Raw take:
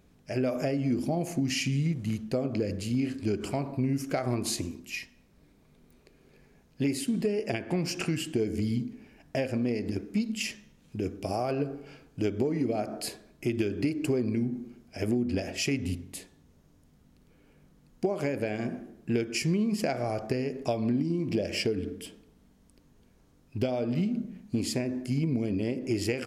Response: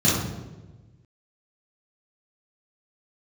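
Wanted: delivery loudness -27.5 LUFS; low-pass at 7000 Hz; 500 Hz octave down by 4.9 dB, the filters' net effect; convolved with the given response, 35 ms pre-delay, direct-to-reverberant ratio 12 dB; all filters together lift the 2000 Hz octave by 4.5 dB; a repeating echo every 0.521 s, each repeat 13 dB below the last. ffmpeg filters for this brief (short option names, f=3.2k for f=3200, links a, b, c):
-filter_complex "[0:a]lowpass=7k,equalizer=f=500:t=o:g=-7,equalizer=f=2k:t=o:g=6,aecho=1:1:521|1042|1563:0.224|0.0493|0.0108,asplit=2[a][b];[1:a]atrim=start_sample=2205,adelay=35[c];[b][c]afir=irnorm=-1:irlink=0,volume=-28.5dB[d];[a][d]amix=inputs=2:normalize=0,volume=2dB"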